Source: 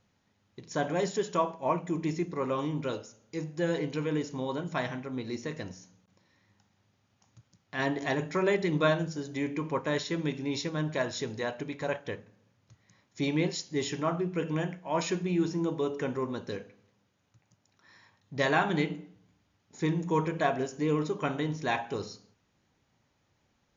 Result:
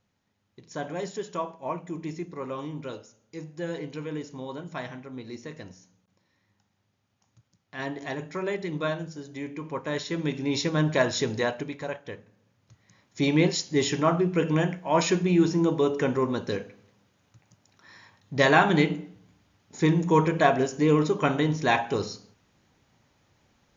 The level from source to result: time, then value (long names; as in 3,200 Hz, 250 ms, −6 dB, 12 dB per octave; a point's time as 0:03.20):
0:09.59 −3.5 dB
0:10.75 +7.5 dB
0:11.40 +7.5 dB
0:11.97 −3 dB
0:13.44 +7 dB